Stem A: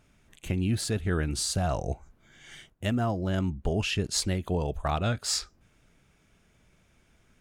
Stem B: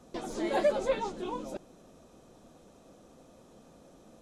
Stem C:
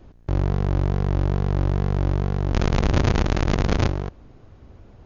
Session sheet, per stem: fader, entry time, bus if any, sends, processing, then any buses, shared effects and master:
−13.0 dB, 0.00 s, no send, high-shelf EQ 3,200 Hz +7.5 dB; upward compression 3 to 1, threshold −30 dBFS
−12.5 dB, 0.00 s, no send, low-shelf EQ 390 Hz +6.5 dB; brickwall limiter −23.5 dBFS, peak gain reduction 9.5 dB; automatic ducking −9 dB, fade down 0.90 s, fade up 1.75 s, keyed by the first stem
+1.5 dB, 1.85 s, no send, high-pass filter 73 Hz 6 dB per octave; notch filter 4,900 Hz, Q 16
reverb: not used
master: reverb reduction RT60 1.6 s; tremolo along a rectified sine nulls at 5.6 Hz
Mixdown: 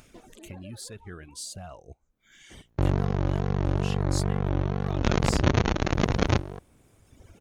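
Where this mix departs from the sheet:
stem C: entry 1.85 s → 2.50 s
master: missing tremolo along a rectified sine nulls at 5.6 Hz

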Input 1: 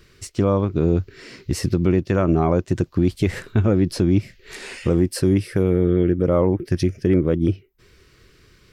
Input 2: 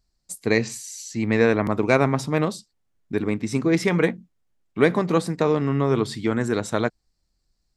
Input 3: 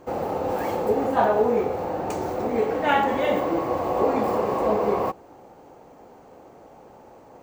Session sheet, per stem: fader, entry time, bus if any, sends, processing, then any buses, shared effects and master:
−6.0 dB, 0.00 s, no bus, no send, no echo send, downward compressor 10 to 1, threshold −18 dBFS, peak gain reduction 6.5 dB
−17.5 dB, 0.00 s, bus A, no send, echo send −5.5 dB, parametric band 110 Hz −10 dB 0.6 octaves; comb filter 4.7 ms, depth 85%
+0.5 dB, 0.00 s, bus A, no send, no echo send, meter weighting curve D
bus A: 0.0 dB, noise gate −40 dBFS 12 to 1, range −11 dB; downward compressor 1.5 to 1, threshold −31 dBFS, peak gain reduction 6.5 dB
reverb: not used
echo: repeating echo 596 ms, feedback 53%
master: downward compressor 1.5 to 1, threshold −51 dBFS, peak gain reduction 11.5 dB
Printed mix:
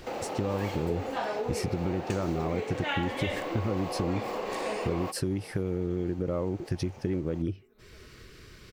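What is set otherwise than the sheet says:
stem 1 −6.0 dB → +5.5 dB
stem 2 −17.5 dB → −28.5 dB
stem 3 +0.5 dB → +8.0 dB

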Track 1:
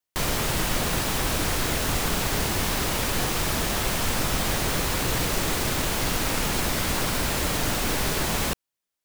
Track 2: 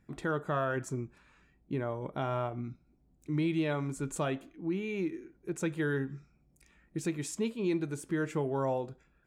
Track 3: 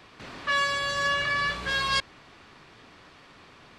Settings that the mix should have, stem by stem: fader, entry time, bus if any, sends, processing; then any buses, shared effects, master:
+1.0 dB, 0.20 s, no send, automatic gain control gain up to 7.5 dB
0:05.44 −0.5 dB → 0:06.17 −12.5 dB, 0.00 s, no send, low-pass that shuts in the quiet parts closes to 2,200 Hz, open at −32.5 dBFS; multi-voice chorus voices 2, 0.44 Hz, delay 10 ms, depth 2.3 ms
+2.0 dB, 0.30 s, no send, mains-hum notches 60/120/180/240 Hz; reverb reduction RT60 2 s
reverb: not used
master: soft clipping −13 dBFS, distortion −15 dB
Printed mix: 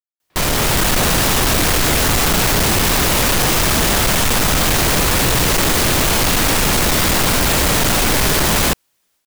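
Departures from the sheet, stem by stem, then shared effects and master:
stem 1 +1.0 dB → +12.5 dB
stem 2: muted
stem 3 +2.0 dB → −8.0 dB

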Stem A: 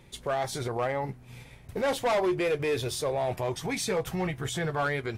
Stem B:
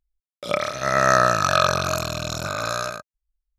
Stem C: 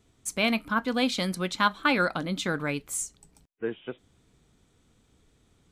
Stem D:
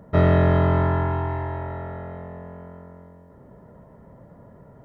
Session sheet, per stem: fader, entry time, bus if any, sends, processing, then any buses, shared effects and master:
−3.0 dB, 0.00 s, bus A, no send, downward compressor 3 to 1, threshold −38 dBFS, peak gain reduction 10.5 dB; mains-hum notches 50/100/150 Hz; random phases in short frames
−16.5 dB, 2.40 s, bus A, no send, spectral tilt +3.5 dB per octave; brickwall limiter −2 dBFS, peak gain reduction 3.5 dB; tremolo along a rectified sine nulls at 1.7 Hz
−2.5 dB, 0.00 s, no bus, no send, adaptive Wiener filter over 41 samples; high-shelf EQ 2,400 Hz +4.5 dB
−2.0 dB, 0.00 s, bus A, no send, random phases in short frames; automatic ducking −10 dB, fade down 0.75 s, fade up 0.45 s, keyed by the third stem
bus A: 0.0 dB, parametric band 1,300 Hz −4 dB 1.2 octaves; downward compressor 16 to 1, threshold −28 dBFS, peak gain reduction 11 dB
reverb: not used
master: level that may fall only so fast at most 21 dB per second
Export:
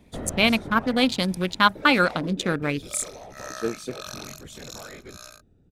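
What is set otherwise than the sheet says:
stem C −2.5 dB → +5.0 dB
stem D −2.0 dB → −11.5 dB
master: missing level that may fall only so fast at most 21 dB per second

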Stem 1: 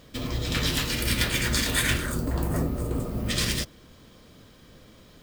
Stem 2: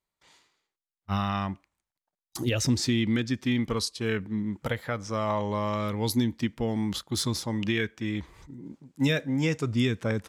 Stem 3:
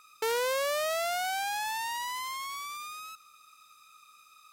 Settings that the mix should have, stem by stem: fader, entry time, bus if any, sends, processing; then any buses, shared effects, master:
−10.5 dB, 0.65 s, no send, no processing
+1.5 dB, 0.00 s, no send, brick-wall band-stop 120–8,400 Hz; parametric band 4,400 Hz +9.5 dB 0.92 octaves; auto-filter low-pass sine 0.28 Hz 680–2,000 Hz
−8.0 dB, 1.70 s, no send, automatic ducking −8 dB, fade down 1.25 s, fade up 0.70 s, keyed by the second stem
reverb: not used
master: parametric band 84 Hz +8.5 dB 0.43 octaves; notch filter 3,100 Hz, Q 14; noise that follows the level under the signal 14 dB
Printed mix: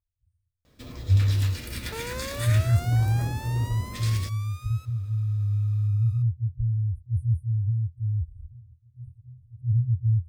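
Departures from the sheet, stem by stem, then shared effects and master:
stem 2 +1.5 dB → +9.0 dB
stem 3 −8.0 dB → +1.0 dB
master: missing noise that follows the level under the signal 14 dB

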